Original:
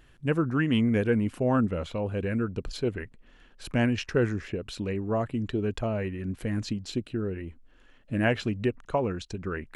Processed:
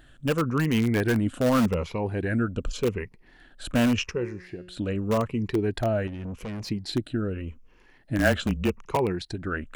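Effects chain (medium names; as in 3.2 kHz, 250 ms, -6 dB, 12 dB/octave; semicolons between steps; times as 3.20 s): drifting ripple filter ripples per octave 0.81, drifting -0.85 Hz, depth 10 dB; 4.11–4.77 s: feedback comb 180 Hz, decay 0.61 s, harmonics all, mix 70%; 8.18–8.96 s: frequency shift -26 Hz; in parallel at -10.5 dB: integer overflow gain 18 dB; 6.07–6.70 s: on the sum: valve stage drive 31 dB, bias 0.3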